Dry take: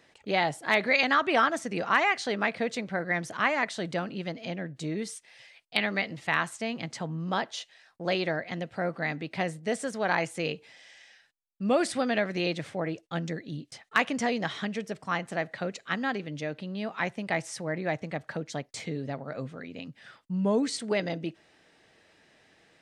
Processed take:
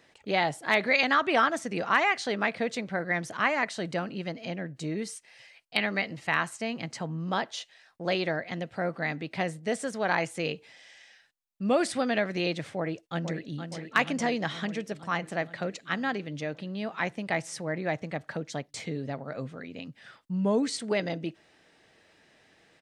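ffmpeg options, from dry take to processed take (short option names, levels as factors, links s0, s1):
-filter_complex "[0:a]asettb=1/sr,asplit=3[s0][s1][s2];[s0]atrim=end=3.394[s3];[s1]atrim=start=3.39:end=7.24,asetpts=PTS-STARTPTS,afade=t=in:d=0.004:c=qsin,afade=t=out:st=3.846:d=0.004:c=qsin,bandreject=f=3500:w=12[s4];[s2]atrim=start=7.236[s5];[s3][s4]acrossfade=d=0.004:c1=hsin:c2=qsin[s6];[s6][s5]acrossfade=d=0.004:c1=qsin:c2=hsin,asplit=2[s7][s8];[s8]afade=t=in:st=12.77:d=0.01,afade=t=out:st=13.62:d=0.01,aecho=0:1:470|940|1410|1880|2350|2820|3290|3760|4230|4700|5170:0.398107|0.278675|0.195073|0.136551|0.0955855|0.0669099|0.0468369|0.0327858|0.0229501|0.0160651|0.0112455[s9];[s7][s9]amix=inputs=2:normalize=0"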